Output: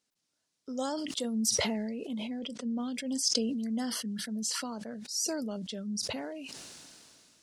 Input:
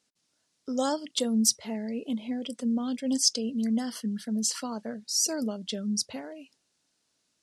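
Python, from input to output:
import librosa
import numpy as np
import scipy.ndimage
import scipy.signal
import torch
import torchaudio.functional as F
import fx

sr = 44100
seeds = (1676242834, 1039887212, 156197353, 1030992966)

y = fx.lowpass(x, sr, hz=6000.0, slope=12, at=(2.39, 2.8))
y = fx.sustainer(y, sr, db_per_s=23.0)
y = y * 10.0 ** (-6.5 / 20.0)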